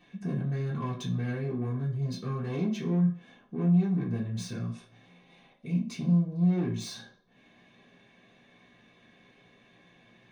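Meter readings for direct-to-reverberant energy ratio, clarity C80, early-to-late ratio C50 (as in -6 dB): -7.0 dB, 13.0 dB, 9.0 dB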